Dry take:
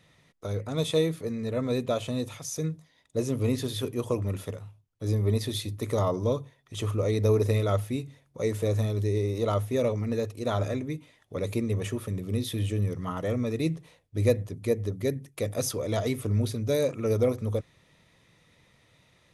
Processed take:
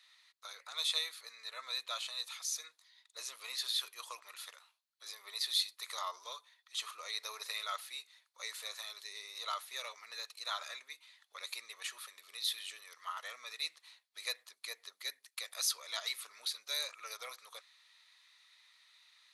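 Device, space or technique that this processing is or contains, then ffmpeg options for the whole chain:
headphones lying on a table: -af "highpass=f=1100:w=0.5412,highpass=f=1100:w=1.3066,equalizer=f=4200:t=o:w=0.35:g=12,volume=0.75"

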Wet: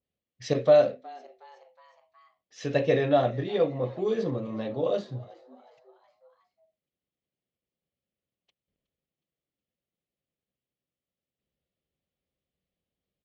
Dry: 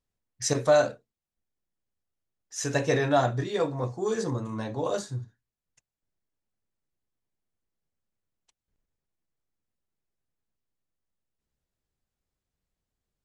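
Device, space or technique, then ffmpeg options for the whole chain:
frequency-shifting delay pedal into a guitar cabinet: -filter_complex "[0:a]asplit=5[s0][s1][s2][s3][s4];[s1]adelay=366,afreqshift=130,volume=0.0794[s5];[s2]adelay=732,afreqshift=260,volume=0.0468[s6];[s3]adelay=1098,afreqshift=390,volume=0.0275[s7];[s4]adelay=1464,afreqshift=520,volume=0.0164[s8];[s0][s5][s6][s7][s8]amix=inputs=5:normalize=0,highpass=75,equalizer=f=110:t=q:w=4:g=-6,equalizer=f=180:t=q:w=4:g=3,equalizer=f=540:t=q:w=4:g=6,equalizer=f=940:t=q:w=4:g=-10,equalizer=f=1500:t=q:w=4:g=-9,equalizer=f=3100:t=q:w=4:g=4,lowpass=f=4000:w=0.5412,lowpass=f=4000:w=1.3066,adynamicequalizer=threshold=0.00891:dfrequency=2600:dqfactor=0.7:tfrequency=2600:tqfactor=0.7:attack=5:release=100:ratio=0.375:range=2:mode=cutabove:tftype=highshelf"

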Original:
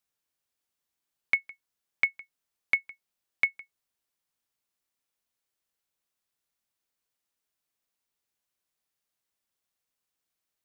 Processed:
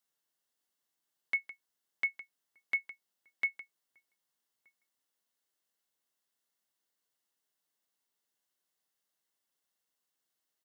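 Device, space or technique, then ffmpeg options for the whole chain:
PA system with an anti-feedback notch: -filter_complex "[0:a]highpass=160,asuperstop=centerf=2400:order=4:qfactor=7.3,bandreject=f=1300:w=29,alimiter=limit=0.0708:level=0:latency=1:release=12,asplit=2[s0][s1];[s1]adelay=1224,volume=0.0316,highshelf=f=4000:g=-27.6[s2];[s0][s2]amix=inputs=2:normalize=0"

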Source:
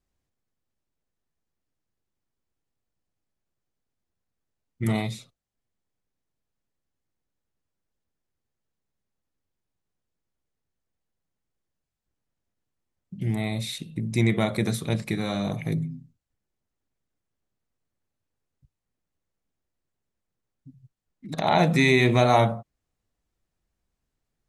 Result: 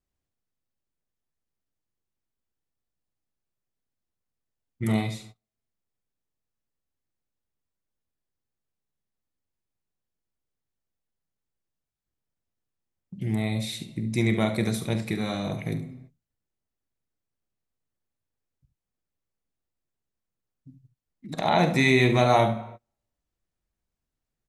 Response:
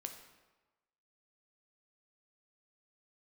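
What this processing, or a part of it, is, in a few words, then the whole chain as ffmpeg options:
keyed gated reverb: -filter_complex "[0:a]aecho=1:1:46|72:0.2|0.237,asplit=3[s0][s1][s2];[1:a]atrim=start_sample=2205[s3];[s1][s3]afir=irnorm=-1:irlink=0[s4];[s2]apad=whole_len=1083111[s5];[s4][s5]sidechaingate=range=0.0224:threshold=0.00355:ratio=16:detection=peak,volume=1[s6];[s0][s6]amix=inputs=2:normalize=0,volume=0.531"

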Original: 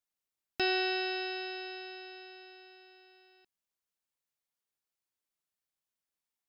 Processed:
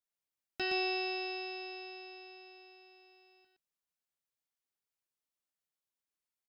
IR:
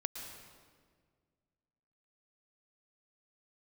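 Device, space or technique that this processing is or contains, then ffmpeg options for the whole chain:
slapback doubling: -filter_complex "[0:a]asplit=3[s0][s1][s2];[s1]adelay=17,volume=0.355[s3];[s2]adelay=118,volume=0.631[s4];[s0][s3][s4]amix=inputs=3:normalize=0,volume=0.531"

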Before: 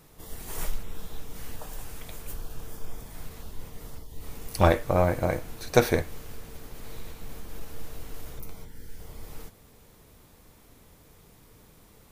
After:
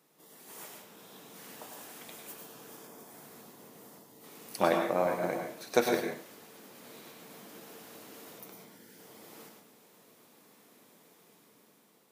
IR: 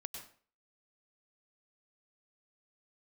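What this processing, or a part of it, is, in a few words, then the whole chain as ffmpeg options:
far laptop microphone: -filter_complex "[1:a]atrim=start_sample=2205[s0];[0:a][s0]afir=irnorm=-1:irlink=0,highpass=f=200:w=0.5412,highpass=f=200:w=1.3066,dynaudnorm=f=310:g=7:m=2.24,asettb=1/sr,asplit=3[s1][s2][s3];[s1]atrim=end=2.874[s4];[s2]atrim=start=2.87:end=4.24,asetpts=PTS-STARTPTS,afade=t=in:d=0.004:c=qsin,afade=t=out:st=1.366:d=0.004:c=qsin,equalizer=f=3100:w=0.72:g=-5[s5];[s3]atrim=start=4.236[s6];[s4][s5]acrossfade=d=0.004:c1=hsin:c2=qsin[s7];[s7][s6]acrossfade=d=0.004:c1=qsin:c2=hsin,volume=0.473"

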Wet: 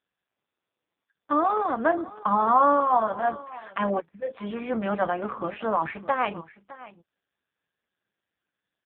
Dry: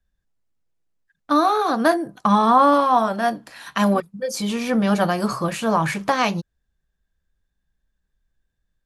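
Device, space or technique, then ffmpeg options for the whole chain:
satellite phone: -af "highpass=300,lowpass=3100,aecho=1:1:610:0.126,volume=0.668" -ar 8000 -c:a libopencore_amrnb -b:a 5150

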